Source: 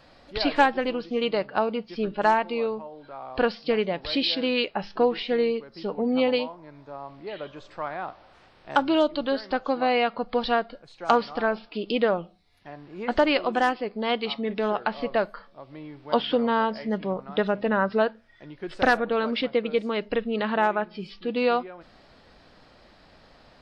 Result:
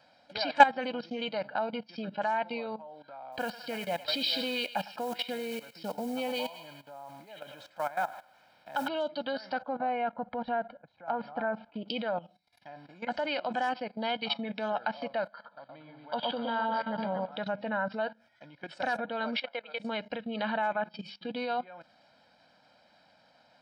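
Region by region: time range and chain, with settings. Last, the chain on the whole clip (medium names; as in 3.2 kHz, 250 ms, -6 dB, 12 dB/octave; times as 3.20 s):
3.32–8.88 s: modulation noise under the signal 23 dB + thinning echo 103 ms, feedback 55%, high-pass 950 Hz, level -10.5 dB
9.62–11.88 s: low-pass 1.6 kHz + peaking EQ 60 Hz +14.5 dB 1.5 oct
15.27–17.32 s: rippled Chebyshev low-pass 4.8 kHz, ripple 3 dB + echo whose repeats swap between lows and highs 116 ms, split 1.2 kHz, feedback 52%, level -3 dB
19.37–19.80 s: high-pass 740 Hz + treble shelf 2.9 kHz -6 dB
whole clip: level held to a coarse grid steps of 16 dB; high-pass 210 Hz 12 dB/octave; comb 1.3 ms, depth 81%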